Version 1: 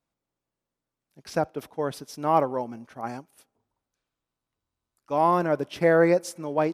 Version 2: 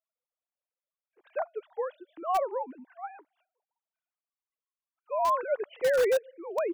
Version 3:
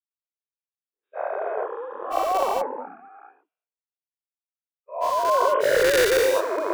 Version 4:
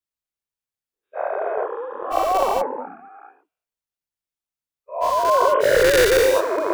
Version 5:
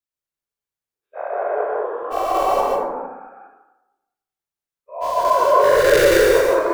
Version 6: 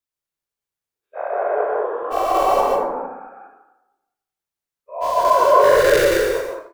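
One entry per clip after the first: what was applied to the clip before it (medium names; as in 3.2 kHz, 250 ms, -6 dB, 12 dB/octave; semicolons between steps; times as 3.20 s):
formants replaced by sine waves; in parallel at -12 dB: integer overflow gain 14 dB; on the sum: trim -6.5 dB
every event in the spectrogram widened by 480 ms; three bands expanded up and down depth 100%
bass shelf 140 Hz +9 dB; trim +3 dB
plate-style reverb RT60 1 s, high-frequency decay 0.4×, pre-delay 115 ms, DRR -2.5 dB; trim -3 dB
fade out at the end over 1.03 s; trim +1.5 dB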